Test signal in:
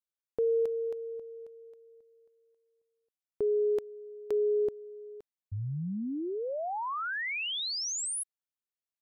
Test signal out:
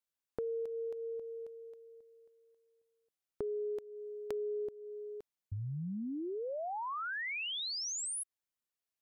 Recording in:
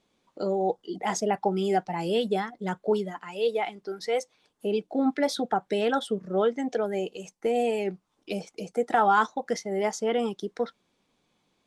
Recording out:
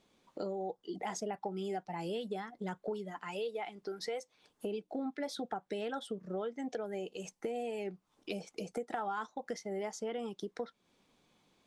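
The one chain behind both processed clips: compressor 4:1, threshold -39 dBFS; gain +1 dB

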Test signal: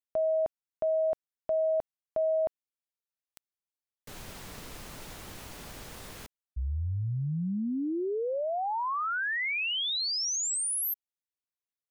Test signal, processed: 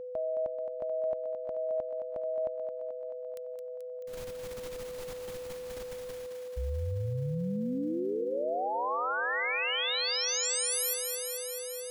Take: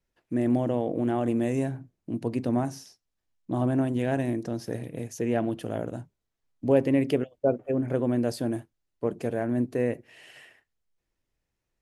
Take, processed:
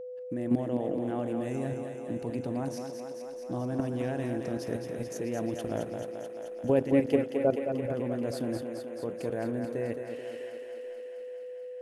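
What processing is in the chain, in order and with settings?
level quantiser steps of 11 dB; thinning echo 0.217 s, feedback 77%, high-pass 230 Hz, level -6 dB; whine 500 Hz -38 dBFS

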